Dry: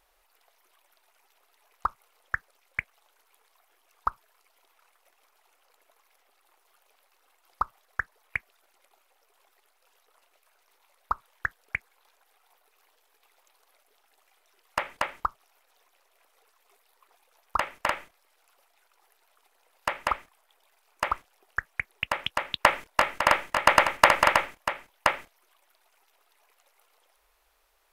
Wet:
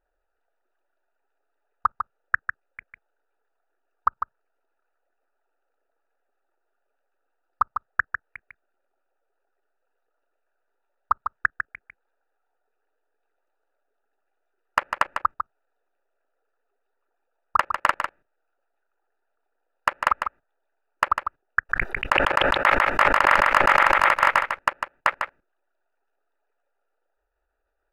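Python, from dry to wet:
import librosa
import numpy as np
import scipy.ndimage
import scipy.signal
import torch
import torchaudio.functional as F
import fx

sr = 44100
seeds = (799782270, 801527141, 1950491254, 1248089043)

y = fx.wiener(x, sr, points=41)
y = fx.peak_eq(y, sr, hz=1400.0, db=10.5, octaves=1.3)
y = fx.level_steps(y, sr, step_db=20)
y = y + 10.0 ** (-7.0 / 20.0) * np.pad(y, (int(150 * sr / 1000.0), 0))[:len(y)]
y = fx.sustainer(y, sr, db_per_s=21.0, at=(21.69, 24.07), fade=0.02)
y = F.gain(torch.from_numpy(y), 2.0).numpy()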